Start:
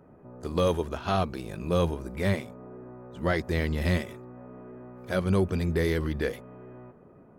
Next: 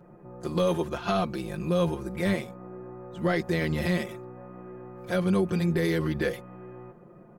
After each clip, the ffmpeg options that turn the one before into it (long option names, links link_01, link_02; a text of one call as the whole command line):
ffmpeg -i in.wav -af "aecho=1:1:5.7:0.92,alimiter=limit=-16.5dB:level=0:latency=1:release=28" out.wav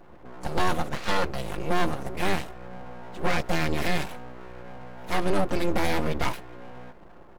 ffmpeg -i in.wav -af "aeval=exprs='abs(val(0))':channel_layout=same,volume=4dB" out.wav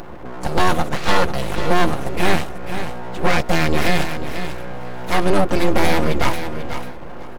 ffmpeg -i in.wav -filter_complex "[0:a]asplit=2[link_01][link_02];[link_02]acompressor=mode=upward:threshold=-26dB:ratio=2.5,volume=-2dB[link_03];[link_01][link_03]amix=inputs=2:normalize=0,aecho=1:1:492|984:0.335|0.0569,volume=3dB" out.wav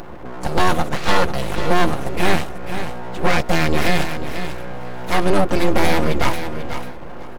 ffmpeg -i in.wav -af anull out.wav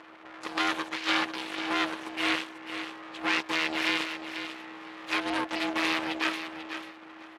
ffmpeg -i in.wav -af "aeval=exprs='val(0)*sin(2*PI*320*n/s)':channel_layout=same,bandpass=frequency=2900:width_type=q:width=1:csg=0" out.wav